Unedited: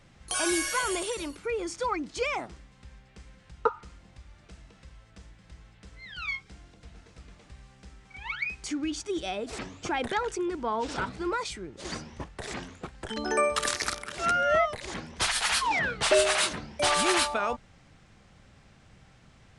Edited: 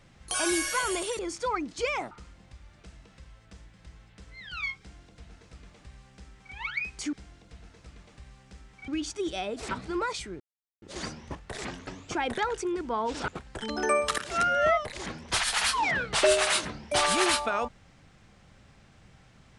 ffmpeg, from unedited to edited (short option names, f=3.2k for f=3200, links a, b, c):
-filter_complex "[0:a]asplit=10[a][b][c][d][e][f][g][h][i][j];[a]atrim=end=1.192[k];[b]atrim=start=1.568:end=2.492[l];[c]atrim=start=3.758:end=8.782[m];[d]atrim=start=6.448:end=8.202[n];[e]atrim=start=8.778:end=9.612[o];[f]atrim=start=11.018:end=11.71,asetpts=PTS-STARTPTS,afade=t=out:st=0.688:d=0.004:c=hsin,apad=pad_dur=0.42[p];[g]atrim=start=11.71:end=12.762,asetpts=PTS-STARTPTS,afade=t=in:d=0.004:c=hsin[q];[h]atrim=start=9.608:end=11.022[r];[i]atrim=start=12.758:end=13.662[s];[j]atrim=start=14.058[t];[k][l]acrossfade=d=0.004:c1=hsin:c2=hsin[u];[u][m]acrossfade=d=0.004:c1=hsin:c2=hsin[v];[v][n]acrossfade=d=0.004:c1=hsin:c2=hsin[w];[w][o]acrossfade=d=0.004:c1=hsin:c2=hsin[x];[p][q]concat=n=2:v=0:a=1[y];[x][y]acrossfade=d=0.004:c1=hsin:c2=hsin[z];[z][r]acrossfade=d=0.004:c1=hsin:c2=hsin[aa];[aa][s]acrossfade=d=0.004:c1=hsin:c2=hsin[ab];[ab][t]acrossfade=d=0.004:c1=hsin:c2=hsin"